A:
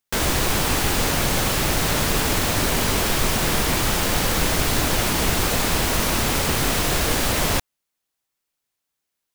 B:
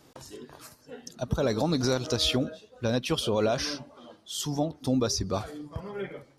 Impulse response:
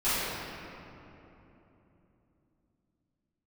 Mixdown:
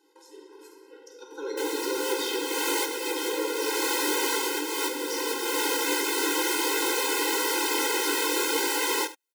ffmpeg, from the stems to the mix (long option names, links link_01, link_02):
-filter_complex "[0:a]flanger=delay=20:depth=5.7:speed=1.5,adelay=1450,volume=2.5dB,asplit=2[link_01][link_02];[link_02]volume=-15dB[link_03];[1:a]volume=-7.5dB,asplit=3[link_04][link_05][link_06];[link_05]volume=-9dB[link_07];[link_06]apad=whole_len=475977[link_08];[link_01][link_08]sidechaincompress=threshold=-39dB:ratio=8:attack=46:release=337[link_09];[2:a]atrim=start_sample=2205[link_10];[link_07][link_10]afir=irnorm=-1:irlink=0[link_11];[link_03]aecho=0:1:73:1[link_12];[link_09][link_04][link_11][link_12]amix=inputs=4:normalize=0,afftfilt=real='re*eq(mod(floor(b*sr/1024/270),2),1)':imag='im*eq(mod(floor(b*sr/1024/270),2),1)':win_size=1024:overlap=0.75"